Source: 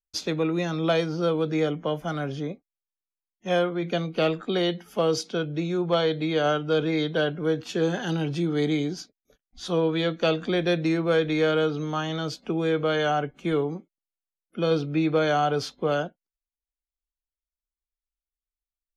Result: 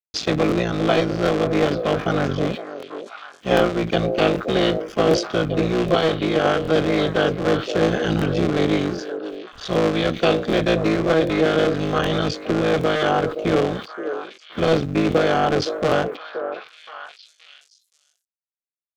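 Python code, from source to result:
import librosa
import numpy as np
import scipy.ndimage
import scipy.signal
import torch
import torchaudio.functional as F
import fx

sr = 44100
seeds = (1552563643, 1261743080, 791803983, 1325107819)

p1 = fx.cycle_switch(x, sr, every=3, mode='muted')
p2 = fx.air_absorb(p1, sr, metres=140.0)
p3 = fx.rider(p2, sr, range_db=10, speed_s=0.5)
p4 = p2 + F.gain(torch.from_numpy(p3), 2.0).numpy()
p5 = fx.quant_dither(p4, sr, seeds[0], bits=12, dither='none')
p6 = fx.high_shelf(p5, sr, hz=6500.0, db=8.5)
p7 = fx.notch(p6, sr, hz=920.0, q=7.6)
p8 = p7 + fx.echo_stepped(p7, sr, ms=523, hz=470.0, octaves=1.4, feedback_pct=70, wet_db=-6.5, dry=0)
p9 = fx.buffer_crackle(p8, sr, first_s=0.47, period_s=0.77, block=1024, kind='repeat')
y = fx.sustainer(p9, sr, db_per_s=130.0)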